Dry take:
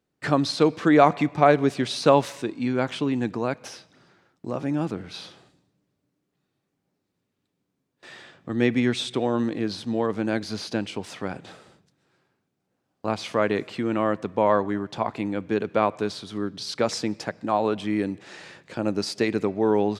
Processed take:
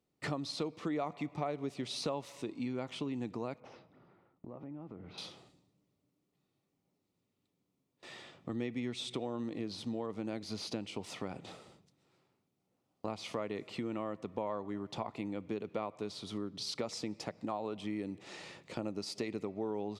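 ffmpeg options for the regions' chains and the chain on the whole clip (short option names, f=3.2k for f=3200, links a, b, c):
-filter_complex "[0:a]asettb=1/sr,asplit=3[a][b][c];[a]atrim=end=3.604[d];[b]atrim=start=3.6:end=5.18,asetpts=PTS-STARTPTS,afade=t=in:d=0.004:c=qsin,afade=t=out:st=1.576:d=0.004:c=qsin,lowpass=1.6k,acompressor=threshold=-40dB:ratio=5:attack=3.2:release=140:knee=1:detection=peak[e];[c]atrim=start=5.176[f];[d][e]acrossfade=d=0.004:c1=hsin:c2=qsin[g];[g][f]acrossfade=d=0.004:c1=qsin:c2=hsin,equalizer=f=1.6k:t=o:w=0.2:g=-14.5,acompressor=threshold=-32dB:ratio=4,volume=-4dB"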